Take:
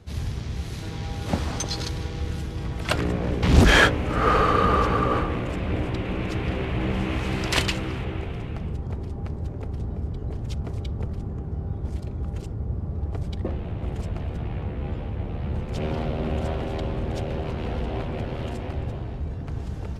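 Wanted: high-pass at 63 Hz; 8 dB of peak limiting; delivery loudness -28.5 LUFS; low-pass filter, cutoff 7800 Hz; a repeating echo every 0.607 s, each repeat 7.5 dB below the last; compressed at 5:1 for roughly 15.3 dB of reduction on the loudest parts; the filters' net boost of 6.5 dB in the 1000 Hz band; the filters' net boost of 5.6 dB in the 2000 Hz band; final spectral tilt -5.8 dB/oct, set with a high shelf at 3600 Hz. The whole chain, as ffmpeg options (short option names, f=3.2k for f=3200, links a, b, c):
-af "highpass=63,lowpass=7.8k,equalizer=f=1k:t=o:g=7,equalizer=f=2k:t=o:g=6.5,highshelf=f=3.6k:g=-7.5,acompressor=threshold=-26dB:ratio=5,alimiter=limit=-22dB:level=0:latency=1,aecho=1:1:607|1214|1821|2428|3035:0.422|0.177|0.0744|0.0312|0.0131,volume=3dB"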